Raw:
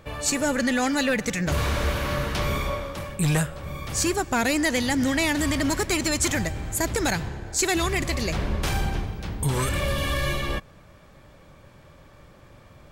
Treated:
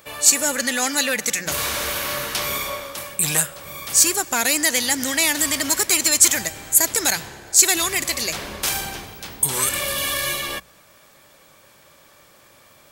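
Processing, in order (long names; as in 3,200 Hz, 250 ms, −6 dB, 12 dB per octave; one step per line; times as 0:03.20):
RIAA equalisation recording
mains-hum notches 60/120/180 Hz
level +1 dB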